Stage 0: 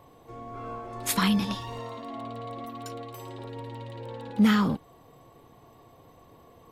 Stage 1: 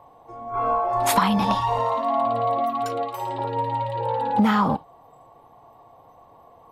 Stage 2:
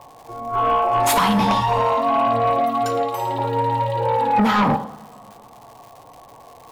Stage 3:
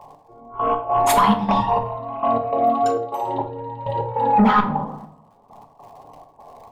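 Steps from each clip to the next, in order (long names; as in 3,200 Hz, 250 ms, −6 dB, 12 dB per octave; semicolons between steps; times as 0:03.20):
noise reduction from a noise print of the clip's start 12 dB; drawn EQ curve 390 Hz 0 dB, 820 Hz +15 dB, 1,600 Hz +2 dB, 6,200 Hz −4 dB; downward compressor 6 to 1, threshold −24 dBFS, peak gain reduction 9.5 dB; level +8 dB
coupled-rooms reverb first 0.67 s, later 2.3 s, from −18 dB, DRR 9.5 dB; surface crackle 250 per second −42 dBFS; in parallel at −10 dB: sine wavefolder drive 11 dB, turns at −6 dBFS; on the sum: level −3 dB
spectral envelope exaggerated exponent 1.5; gate pattern "x...x.xxx.x" 101 BPM −12 dB; rectangular room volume 710 cubic metres, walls furnished, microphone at 1.3 metres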